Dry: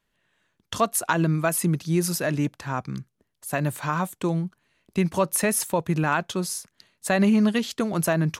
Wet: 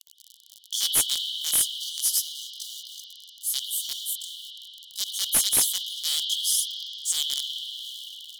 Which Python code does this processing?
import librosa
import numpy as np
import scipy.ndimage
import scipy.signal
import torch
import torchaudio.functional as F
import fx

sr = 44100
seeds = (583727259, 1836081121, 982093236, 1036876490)

p1 = fx.tape_stop_end(x, sr, length_s=1.55)
p2 = fx.high_shelf(p1, sr, hz=11000.0, db=8.5)
p3 = fx.quant_companded(p2, sr, bits=2)
p4 = p2 + (p3 * 10.0 ** (-4.5 / 20.0))
p5 = fx.chorus_voices(p4, sr, voices=2, hz=0.36, base_ms=19, depth_ms=4.3, mix_pct=60)
p6 = fx.dmg_crackle(p5, sr, seeds[0], per_s=50.0, level_db=-29.0)
p7 = fx.tube_stage(p6, sr, drive_db=6.0, bias=0.45)
p8 = fx.brickwall_highpass(p7, sr, low_hz=2900.0)
p9 = fx.rev_spring(p8, sr, rt60_s=3.7, pass_ms=(41,), chirp_ms=50, drr_db=-5.0)
p10 = fx.slew_limit(p9, sr, full_power_hz=800.0)
y = p10 * 10.0 ** (5.0 / 20.0)